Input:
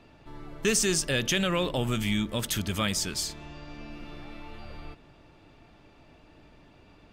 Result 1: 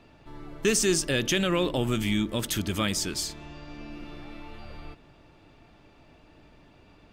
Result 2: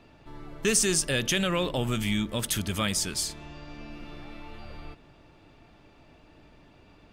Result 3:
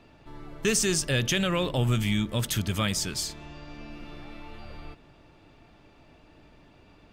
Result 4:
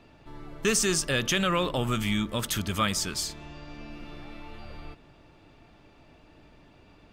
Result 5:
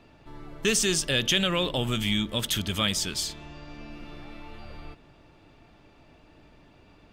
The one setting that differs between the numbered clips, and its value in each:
dynamic EQ, frequency: 320, 9800, 120, 1200, 3300 Hz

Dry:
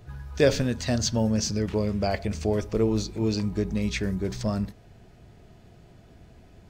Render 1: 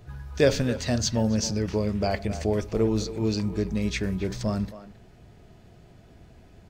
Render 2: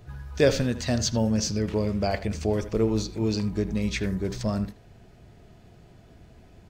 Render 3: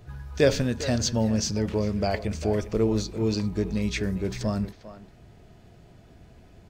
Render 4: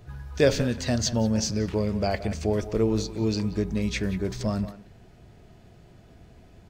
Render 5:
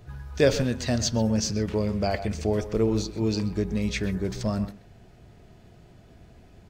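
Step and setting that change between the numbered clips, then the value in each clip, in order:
speakerphone echo, time: 270, 80, 400, 180, 130 ms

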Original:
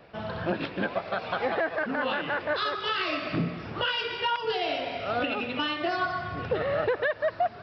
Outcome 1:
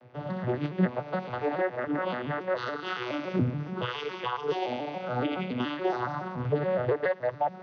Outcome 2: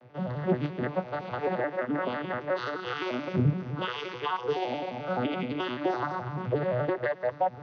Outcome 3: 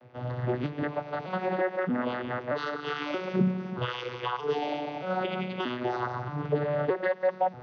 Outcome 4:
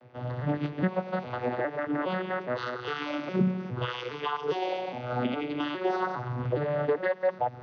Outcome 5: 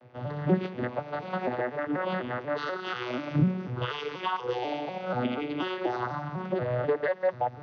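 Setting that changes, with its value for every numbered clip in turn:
arpeggiated vocoder, a note every: 141, 86, 627, 410, 244 ms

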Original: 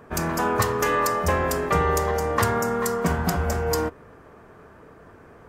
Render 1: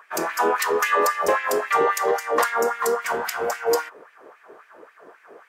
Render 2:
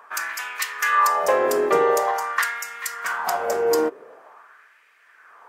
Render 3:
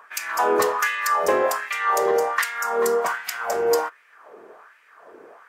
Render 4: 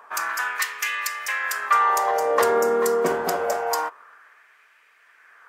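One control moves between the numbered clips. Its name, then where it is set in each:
LFO high-pass, rate: 3.7, 0.46, 1.3, 0.26 Hz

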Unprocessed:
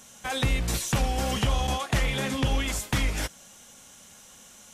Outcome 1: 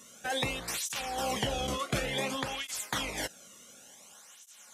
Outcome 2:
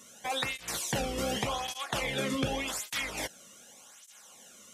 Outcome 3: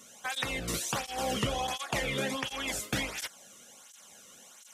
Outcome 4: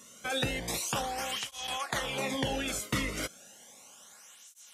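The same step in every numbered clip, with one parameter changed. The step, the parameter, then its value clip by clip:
tape flanging out of phase, nulls at: 0.56, 0.86, 1.4, 0.33 Hz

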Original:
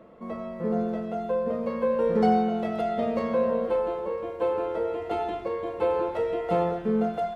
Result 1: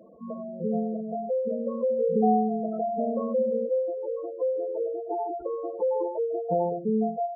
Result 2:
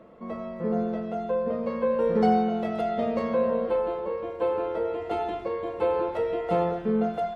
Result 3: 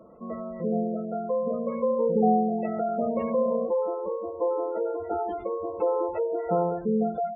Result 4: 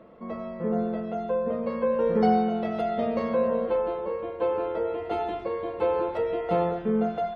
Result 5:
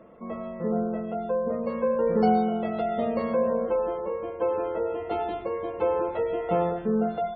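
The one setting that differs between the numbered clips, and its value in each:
spectral gate, under each frame's peak: -10, -60, -20, -50, -35 dB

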